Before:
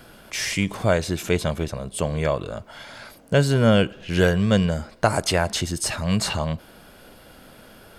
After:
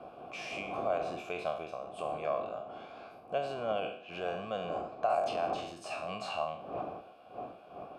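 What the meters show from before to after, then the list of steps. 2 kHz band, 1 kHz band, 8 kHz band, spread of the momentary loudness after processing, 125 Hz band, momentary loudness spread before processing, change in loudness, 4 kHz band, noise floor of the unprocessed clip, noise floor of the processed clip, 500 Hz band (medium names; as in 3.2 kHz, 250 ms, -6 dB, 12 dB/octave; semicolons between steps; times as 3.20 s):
-15.5 dB, -4.5 dB, under -25 dB, 13 LU, -28.5 dB, 15 LU, -14.0 dB, -17.5 dB, -49 dBFS, -53 dBFS, -10.5 dB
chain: spectral sustain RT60 0.56 s; wind noise 300 Hz -25 dBFS; peak limiter -10.5 dBFS, peak gain reduction 9 dB; vowel filter a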